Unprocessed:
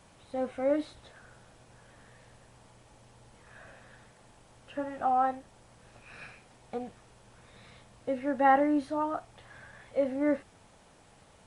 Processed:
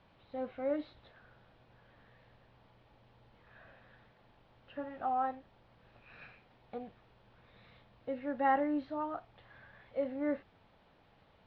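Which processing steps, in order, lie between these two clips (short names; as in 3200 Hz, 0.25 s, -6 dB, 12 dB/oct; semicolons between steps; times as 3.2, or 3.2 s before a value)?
steep low-pass 4200 Hz 36 dB/oct; gain -6.5 dB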